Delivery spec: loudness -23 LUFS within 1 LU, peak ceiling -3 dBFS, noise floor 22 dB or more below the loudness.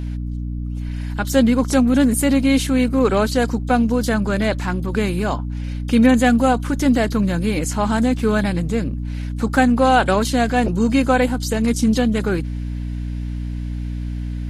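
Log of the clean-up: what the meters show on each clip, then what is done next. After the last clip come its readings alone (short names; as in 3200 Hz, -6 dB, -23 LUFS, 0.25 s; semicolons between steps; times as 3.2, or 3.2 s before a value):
hum 60 Hz; harmonics up to 300 Hz; hum level -23 dBFS; loudness -19.0 LUFS; peak -2.5 dBFS; loudness target -23.0 LUFS
-> de-hum 60 Hz, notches 5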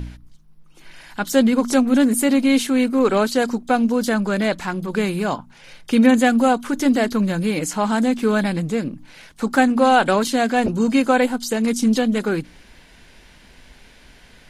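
hum none; loudness -18.5 LUFS; peak -3.0 dBFS; loudness target -23.0 LUFS
-> gain -4.5 dB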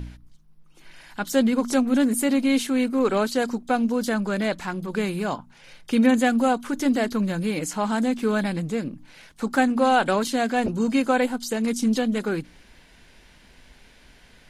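loudness -23.0 LUFS; peak -7.5 dBFS; noise floor -53 dBFS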